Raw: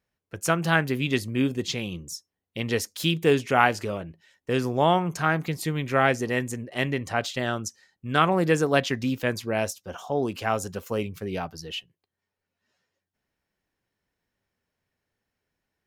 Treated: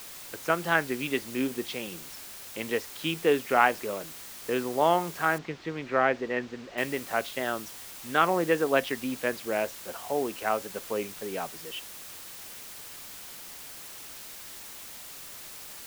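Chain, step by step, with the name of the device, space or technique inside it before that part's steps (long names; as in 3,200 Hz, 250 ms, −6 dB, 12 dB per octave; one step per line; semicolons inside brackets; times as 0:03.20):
wax cylinder (band-pass filter 290–2,800 Hz; tape wow and flutter; white noise bed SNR 13 dB)
0:05.38–0:06.78: high-frequency loss of the air 170 metres
level −1.5 dB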